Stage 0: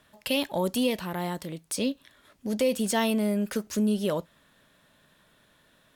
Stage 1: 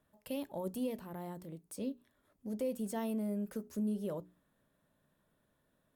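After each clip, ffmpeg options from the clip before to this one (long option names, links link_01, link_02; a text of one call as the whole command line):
ffmpeg -i in.wav -af "equalizer=frequency=3500:width=0.37:gain=-14,bandreject=frequency=60:width_type=h:width=6,bandreject=frequency=120:width_type=h:width=6,bandreject=frequency=180:width_type=h:width=6,bandreject=frequency=240:width_type=h:width=6,bandreject=frequency=300:width_type=h:width=6,bandreject=frequency=360:width_type=h:width=6,bandreject=frequency=420:width_type=h:width=6,volume=-9dB" out.wav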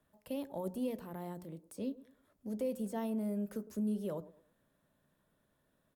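ffmpeg -i in.wav -filter_complex "[0:a]acrossover=split=190|1300[link_01][link_02][link_03];[link_02]aecho=1:1:108|216|324:0.158|0.0523|0.0173[link_04];[link_03]alimiter=level_in=18.5dB:limit=-24dB:level=0:latency=1:release=140,volume=-18.5dB[link_05];[link_01][link_04][link_05]amix=inputs=3:normalize=0" out.wav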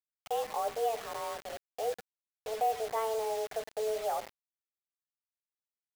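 ffmpeg -i in.wav -filter_complex "[0:a]highpass=frequency=250:width_type=q:width=0.5412,highpass=frequency=250:width_type=q:width=1.307,lowpass=frequency=3200:width_type=q:width=0.5176,lowpass=frequency=3200:width_type=q:width=0.7071,lowpass=frequency=3200:width_type=q:width=1.932,afreqshift=220,asplit=2[link_01][link_02];[link_02]asoftclip=type=tanh:threshold=-36dB,volume=-11dB[link_03];[link_01][link_03]amix=inputs=2:normalize=0,acrusher=bits=7:mix=0:aa=0.000001,volume=5.5dB" out.wav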